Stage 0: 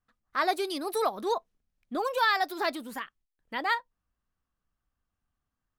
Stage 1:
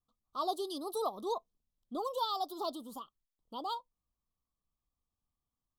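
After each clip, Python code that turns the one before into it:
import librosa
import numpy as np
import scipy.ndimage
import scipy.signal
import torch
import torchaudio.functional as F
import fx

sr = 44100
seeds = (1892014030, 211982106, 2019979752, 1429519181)

y = scipy.signal.sosfilt(scipy.signal.ellip(3, 1.0, 40, [1200.0, 3200.0], 'bandstop', fs=sr, output='sos'), x)
y = y * librosa.db_to_amplitude(-6.0)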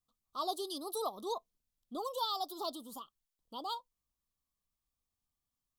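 y = fx.high_shelf(x, sr, hz=2600.0, db=7.0)
y = y * librosa.db_to_amplitude(-3.0)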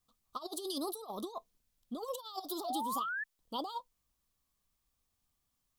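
y = fx.over_compress(x, sr, threshold_db=-42.0, ratio=-0.5)
y = fx.spec_paint(y, sr, seeds[0], shape='rise', start_s=2.64, length_s=0.6, low_hz=660.0, high_hz=1800.0, level_db=-40.0)
y = y * librosa.db_to_amplitude(3.0)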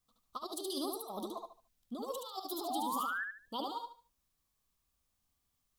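y = fx.echo_feedback(x, sr, ms=73, feedback_pct=28, wet_db=-3.5)
y = y * librosa.db_to_amplitude(-1.5)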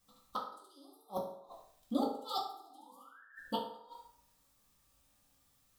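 y = fx.gate_flip(x, sr, shuts_db=-32.0, range_db=-33)
y = fx.rev_fdn(y, sr, rt60_s=0.69, lf_ratio=0.75, hf_ratio=0.65, size_ms=11.0, drr_db=-3.5)
y = y * librosa.db_to_amplitude(6.0)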